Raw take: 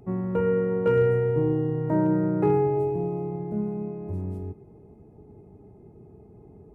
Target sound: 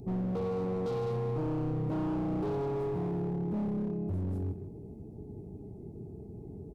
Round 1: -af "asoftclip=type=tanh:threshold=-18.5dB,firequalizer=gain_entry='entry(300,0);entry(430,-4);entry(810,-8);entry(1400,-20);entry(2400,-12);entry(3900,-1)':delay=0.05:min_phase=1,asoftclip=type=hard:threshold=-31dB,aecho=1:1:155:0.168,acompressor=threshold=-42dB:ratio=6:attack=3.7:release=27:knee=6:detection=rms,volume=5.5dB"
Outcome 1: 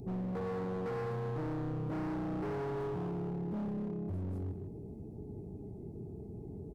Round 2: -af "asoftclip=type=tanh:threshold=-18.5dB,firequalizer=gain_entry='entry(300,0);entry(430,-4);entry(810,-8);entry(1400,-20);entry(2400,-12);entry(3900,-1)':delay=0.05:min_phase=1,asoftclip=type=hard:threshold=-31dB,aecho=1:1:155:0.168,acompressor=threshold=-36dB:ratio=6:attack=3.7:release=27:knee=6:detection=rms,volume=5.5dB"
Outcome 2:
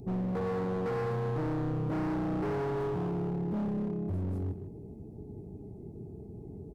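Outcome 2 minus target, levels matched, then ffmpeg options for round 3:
soft clipping: distortion −7 dB
-af "asoftclip=type=tanh:threshold=-26dB,firequalizer=gain_entry='entry(300,0);entry(430,-4);entry(810,-8);entry(1400,-20);entry(2400,-12);entry(3900,-1)':delay=0.05:min_phase=1,asoftclip=type=hard:threshold=-31dB,aecho=1:1:155:0.168,acompressor=threshold=-36dB:ratio=6:attack=3.7:release=27:knee=6:detection=rms,volume=5.5dB"

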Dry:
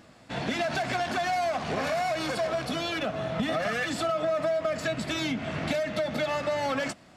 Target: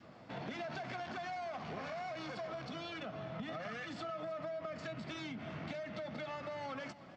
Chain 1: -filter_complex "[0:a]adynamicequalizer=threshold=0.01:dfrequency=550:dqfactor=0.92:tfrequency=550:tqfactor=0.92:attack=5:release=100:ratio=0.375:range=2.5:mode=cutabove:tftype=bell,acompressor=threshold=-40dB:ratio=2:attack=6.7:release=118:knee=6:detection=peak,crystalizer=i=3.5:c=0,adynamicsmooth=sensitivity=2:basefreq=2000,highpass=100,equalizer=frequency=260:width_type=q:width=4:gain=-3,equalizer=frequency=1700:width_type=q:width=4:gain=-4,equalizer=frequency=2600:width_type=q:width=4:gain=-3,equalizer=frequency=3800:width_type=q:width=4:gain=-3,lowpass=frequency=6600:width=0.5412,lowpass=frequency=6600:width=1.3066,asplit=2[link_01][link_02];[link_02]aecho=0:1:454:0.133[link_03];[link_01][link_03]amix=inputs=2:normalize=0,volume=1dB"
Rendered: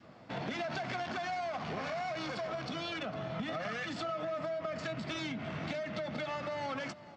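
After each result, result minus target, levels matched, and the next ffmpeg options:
echo 141 ms late; downward compressor: peak gain reduction −5 dB
-filter_complex "[0:a]adynamicequalizer=threshold=0.01:dfrequency=550:dqfactor=0.92:tfrequency=550:tqfactor=0.92:attack=5:release=100:ratio=0.375:range=2.5:mode=cutabove:tftype=bell,acompressor=threshold=-40dB:ratio=2:attack=6.7:release=118:knee=6:detection=peak,crystalizer=i=3.5:c=0,adynamicsmooth=sensitivity=2:basefreq=2000,highpass=100,equalizer=frequency=260:width_type=q:width=4:gain=-3,equalizer=frequency=1700:width_type=q:width=4:gain=-4,equalizer=frequency=2600:width_type=q:width=4:gain=-3,equalizer=frequency=3800:width_type=q:width=4:gain=-3,lowpass=frequency=6600:width=0.5412,lowpass=frequency=6600:width=1.3066,asplit=2[link_01][link_02];[link_02]aecho=0:1:313:0.133[link_03];[link_01][link_03]amix=inputs=2:normalize=0,volume=1dB"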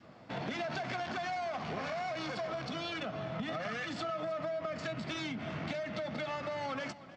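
downward compressor: peak gain reduction −5 dB
-filter_complex "[0:a]adynamicequalizer=threshold=0.01:dfrequency=550:dqfactor=0.92:tfrequency=550:tqfactor=0.92:attack=5:release=100:ratio=0.375:range=2.5:mode=cutabove:tftype=bell,acompressor=threshold=-50dB:ratio=2:attack=6.7:release=118:knee=6:detection=peak,crystalizer=i=3.5:c=0,adynamicsmooth=sensitivity=2:basefreq=2000,highpass=100,equalizer=frequency=260:width_type=q:width=4:gain=-3,equalizer=frequency=1700:width_type=q:width=4:gain=-4,equalizer=frequency=2600:width_type=q:width=4:gain=-3,equalizer=frequency=3800:width_type=q:width=4:gain=-3,lowpass=frequency=6600:width=0.5412,lowpass=frequency=6600:width=1.3066,asplit=2[link_01][link_02];[link_02]aecho=0:1:313:0.133[link_03];[link_01][link_03]amix=inputs=2:normalize=0,volume=1dB"

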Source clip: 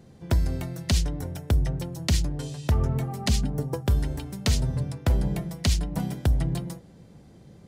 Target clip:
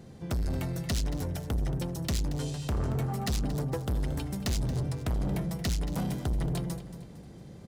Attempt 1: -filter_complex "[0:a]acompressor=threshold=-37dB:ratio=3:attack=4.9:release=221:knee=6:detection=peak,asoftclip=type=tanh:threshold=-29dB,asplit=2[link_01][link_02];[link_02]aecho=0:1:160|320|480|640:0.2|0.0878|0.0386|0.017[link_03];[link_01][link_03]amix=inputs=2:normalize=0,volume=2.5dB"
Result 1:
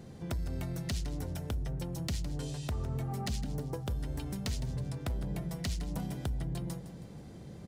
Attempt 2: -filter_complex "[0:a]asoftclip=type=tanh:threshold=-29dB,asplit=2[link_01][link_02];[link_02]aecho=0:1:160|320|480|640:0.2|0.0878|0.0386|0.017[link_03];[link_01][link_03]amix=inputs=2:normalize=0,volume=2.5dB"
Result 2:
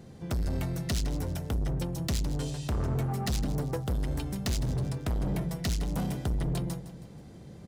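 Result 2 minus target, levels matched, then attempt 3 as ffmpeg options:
echo 68 ms early
-filter_complex "[0:a]asoftclip=type=tanh:threshold=-29dB,asplit=2[link_01][link_02];[link_02]aecho=0:1:228|456|684|912:0.2|0.0878|0.0386|0.017[link_03];[link_01][link_03]amix=inputs=2:normalize=0,volume=2.5dB"

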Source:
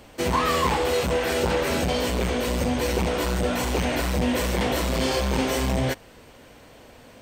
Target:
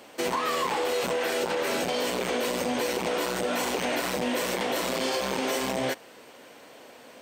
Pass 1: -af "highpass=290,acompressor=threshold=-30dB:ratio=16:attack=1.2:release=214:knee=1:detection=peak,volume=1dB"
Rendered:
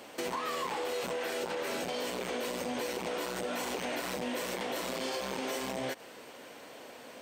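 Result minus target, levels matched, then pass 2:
downward compressor: peak gain reduction +7.5 dB
-af "highpass=290,acompressor=threshold=-22dB:ratio=16:attack=1.2:release=214:knee=1:detection=peak,volume=1dB"

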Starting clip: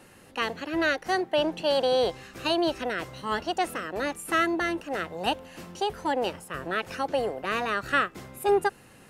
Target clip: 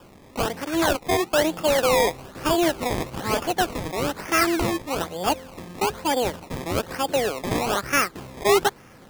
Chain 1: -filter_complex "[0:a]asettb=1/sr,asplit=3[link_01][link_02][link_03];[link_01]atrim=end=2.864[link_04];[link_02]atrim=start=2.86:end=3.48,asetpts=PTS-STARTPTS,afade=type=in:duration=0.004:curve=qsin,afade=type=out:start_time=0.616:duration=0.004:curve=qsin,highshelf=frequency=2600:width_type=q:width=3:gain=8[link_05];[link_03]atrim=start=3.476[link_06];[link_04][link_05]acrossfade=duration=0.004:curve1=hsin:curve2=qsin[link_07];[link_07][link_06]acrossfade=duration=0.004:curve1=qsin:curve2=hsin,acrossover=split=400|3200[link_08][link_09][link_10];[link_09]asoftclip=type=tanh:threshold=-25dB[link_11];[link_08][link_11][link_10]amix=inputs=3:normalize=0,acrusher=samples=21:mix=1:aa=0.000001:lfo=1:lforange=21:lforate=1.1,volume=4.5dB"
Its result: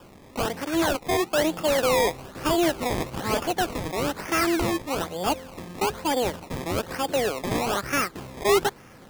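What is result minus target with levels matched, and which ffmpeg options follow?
soft clipping: distortion +15 dB
-filter_complex "[0:a]asettb=1/sr,asplit=3[link_01][link_02][link_03];[link_01]atrim=end=2.864[link_04];[link_02]atrim=start=2.86:end=3.48,asetpts=PTS-STARTPTS,afade=type=in:duration=0.004:curve=qsin,afade=type=out:start_time=0.616:duration=0.004:curve=qsin,highshelf=frequency=2600:width_type=q:width=3:gain=8[link_05];[link_03]atrim=start=3.476[link_06];[link_04][link_05]acrossfade=duration=0.004:curve1=hsin:curve2=qsin[link_07];[link_07][link_06]acrossfade=duration=0.004:curve1=qsin:curve2=hsin,acrossover=split=400|3200[link_08][link_09][link_10];[link_09]asoftclip=type=tanh:threshold=-13.5dB[link_11];[link_08][link_11][link_10]amix=inputs=3:normalize=0,acrusher=samples=21:mix=1:aa=0.000001:lfo=1:lforange=21:lforate=1.1,volume=4.5dB"

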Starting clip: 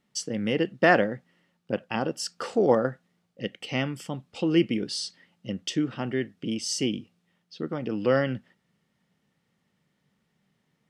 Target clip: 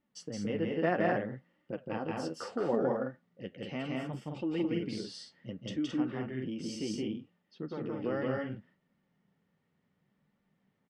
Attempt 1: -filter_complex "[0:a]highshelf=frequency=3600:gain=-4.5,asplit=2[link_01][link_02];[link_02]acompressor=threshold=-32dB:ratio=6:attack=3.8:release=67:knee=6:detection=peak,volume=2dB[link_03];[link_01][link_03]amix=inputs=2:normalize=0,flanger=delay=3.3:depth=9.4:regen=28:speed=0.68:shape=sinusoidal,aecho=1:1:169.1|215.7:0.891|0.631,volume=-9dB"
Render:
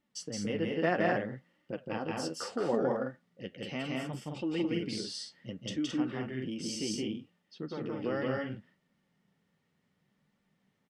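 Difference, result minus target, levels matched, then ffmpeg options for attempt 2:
8,000 Hz band +7.0 dB
-filter_complex "[0:a]highshelf=frequency=3600:gain=-16,asplit=2[link_01][link_02];[link_02]acompressor=threshold=-32dB:ratio=6:attack=3.8:release=67:knee=6:detection=peak,volume=2dB[link_03];[link_01][link_03]amix=inputs=2:normalize=0,flanger=delay=3.3:depth=9.4:regen=28:speed=0.68:shape=sinusoidal,aecho=1:1:169.1|215.7:0.891|0.631,volume=-9dB"

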